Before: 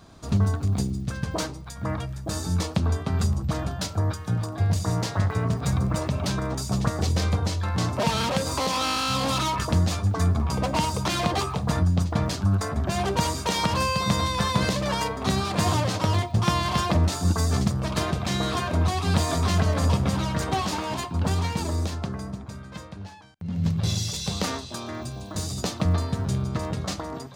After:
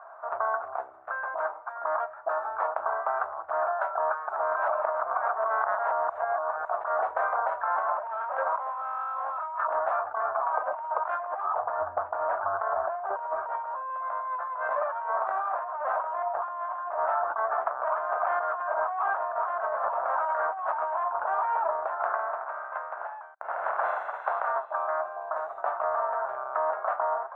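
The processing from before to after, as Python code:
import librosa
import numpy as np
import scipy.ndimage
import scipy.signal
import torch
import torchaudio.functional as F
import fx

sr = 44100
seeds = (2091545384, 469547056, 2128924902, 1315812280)

y = fx.riaa(x, sr, side='playback', at=(11.45, 13.9))
y = fx.ellip_lowpass(y, sr, hz=3500.0, order=4, stop_db=40, at=(16.27, 19.53))
y = fx.spec_flatten(y, sr, power=0.63, at=(21.99, 24.46), fade=0.02)
y = fx.edit(y, sr, fx.reverse_span(start_s=4.29, length_s=2.36), tone=tone)
y = scipy.signal.sosfilt(scipy.signal.ellip(3, 1.0, 60, [640.0, 1500.0], 'bandpass', fs=sr, output='sos'), y)
y = fx.over_compress(y, sr, threshold_db=-37.0, ratio=-1.0)
y = F.gain(torch.from_numpy(y), 8.0).numpy()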